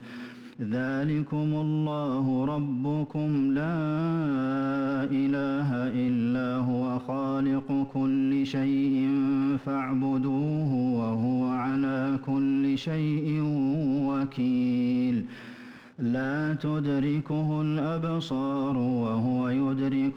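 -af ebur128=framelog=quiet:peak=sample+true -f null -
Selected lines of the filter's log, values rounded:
Integrated loudness:
  I:         -27.5 LUFS
  Threshold: -37.7 LUFS
Loudness range:
  LRA:         1.9 LU
  Threshold: -47.6 LUFS
  LRA low:   -28.6 LUFS
  LRA high:  -26.7 LUFS
Sample peak:
  Peak:      -19.5 dBFS
True peak:
  Peak:      -19.5 dBFS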